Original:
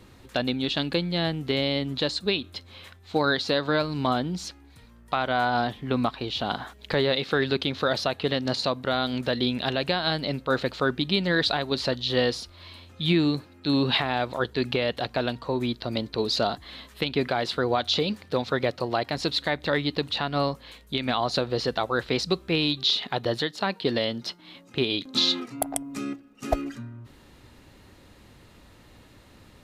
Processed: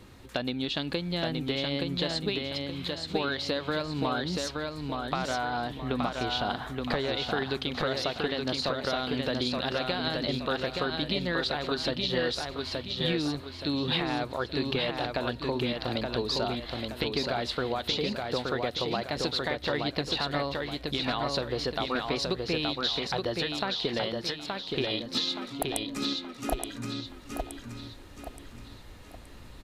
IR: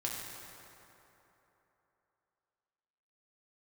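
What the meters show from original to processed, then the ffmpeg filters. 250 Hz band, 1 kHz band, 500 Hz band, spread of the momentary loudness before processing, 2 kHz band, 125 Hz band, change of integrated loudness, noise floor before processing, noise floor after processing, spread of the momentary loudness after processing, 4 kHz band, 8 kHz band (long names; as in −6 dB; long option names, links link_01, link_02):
−4.0 dB, −4.0 dB, −4.0 dB, 9 LU, −4.0 dB, −4.0 dB, −4.0 dB, −53 dBFS, −47 dBFS, 6 LU, −3.0 dB, −2.0 dB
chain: -filter_complex "[0:a]asubboost=boost=3:cutoff=65,acompressor=threshold=-27dB:ratio=6,asplit=2[link_01][link_02];[link_02]aecho=0:1:873|1746|2619|3492|4365:0.668|0.261|0.102|0.0396|0.0155[link_03];[link_01][link_03]amix=inputs=2:normalize=0"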